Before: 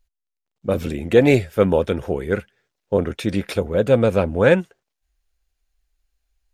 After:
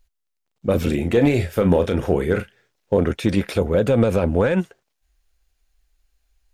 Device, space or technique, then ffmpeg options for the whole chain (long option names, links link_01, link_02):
de-esser from a sidechain: -filter_complex "[0:a]asplit=2[link_01][link_02];[link_02]highpass=frequency=6000:poles=1,apad=whole_len=288271[link_03];[link_01][link_03]sidechaincompress=threshold=-37dB:ratio=5:attack=0.81:release=51,asettb=1/sr,asplit=3[link_04][link_05][link_06];[link_04]atrim=end=0.844[link_07];[link_05]atrim=start=0.84:end=2.97,asetpts=PTS-STARTPTS,afade=type=in:duration=0.004:curve=qsin,afade=type=out:start_time=2.126:duration=0.004:curve=qsin,asplit=2[link_08][link_09];[link_09]adelay=34,volume=-9.5dB[link_10];[link_08][link_10]amix=inputs=2:normalize=0,atrim=end_sample=93933[link_11];[link_06]atrim=start=2.966[link_12];[link_07][link_11]acrossfade=duration=0.004:curve1=hsin:curve2=qsin[link_13];[link_13][link_12]acrossfade=duration=0.004:curve1=qsin:curve2=hsin,volume=5.5dB"